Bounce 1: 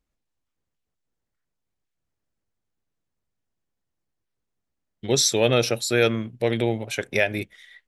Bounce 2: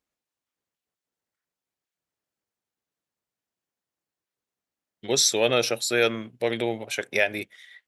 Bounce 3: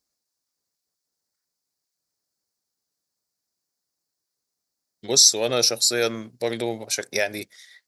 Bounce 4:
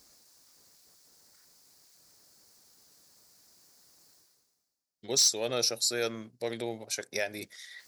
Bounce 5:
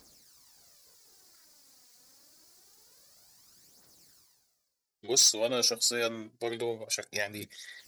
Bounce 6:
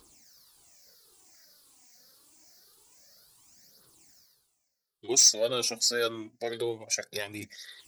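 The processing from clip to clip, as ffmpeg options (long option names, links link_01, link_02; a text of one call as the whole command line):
ffmpeg -i in.wav -af "highpass=frequency=400:poles=1" out.wav
ffmpeg -i in.wav -filter_complex "[0:a]highshelf=frequency=3800:width_type=q:width=3:gain=7.5,asplit=2[link_01][link_02];[link_02]alimiter=limit=-8.5dB:level=0:latency=1:release=339,volume=2dB[link_03];[link_01][link_03]amix=inputs=2:normalize=0,volume=-7dB" out.wav
ffmpeg -i in.wav -af "areverse,acompressor=mode=upward:threshold=-29dB:ratio=2.5,areverse,asoftclip=type=hard:threshold=-8.5dB,volume=-8.5dB" out.wav
ffmpeg -i in.wav -af "aphaser=in_gain=1:out_gain=1:delay=4.2:decay=0.55:speed=0.26:type=triangular" out.wav
ffmpeg -i in.wav -af "afftfilt=real='re*pow(10,11/40*sin(2*PI*(0.64*log(max(b,1)*sr/1024/100)/log(2)-(-1.8)*(pts-256)/sr)))':imag='im*pow(10,11/40*sin(2*PI*(0.64*log(max(b,1)*sr/1024/100)/log(2)-(-1.8)*(pts-256)/sr)))':win_size=1024:overlap=0.75,volume=-1dB" out.wav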